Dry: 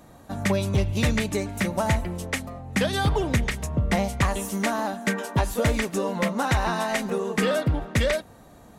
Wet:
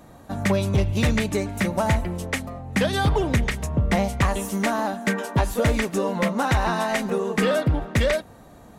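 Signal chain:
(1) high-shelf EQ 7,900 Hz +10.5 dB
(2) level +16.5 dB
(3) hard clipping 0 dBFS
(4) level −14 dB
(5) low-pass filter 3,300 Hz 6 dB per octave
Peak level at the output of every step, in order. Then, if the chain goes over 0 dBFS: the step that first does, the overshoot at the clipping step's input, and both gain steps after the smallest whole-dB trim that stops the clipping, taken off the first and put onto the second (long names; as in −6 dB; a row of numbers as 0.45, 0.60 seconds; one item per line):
−12.0, +4.5, 0.0, −14.0, −14.0 dBFS
step 2, 4.5 dB
step 2 +11.5 dB, step 4 −9 dB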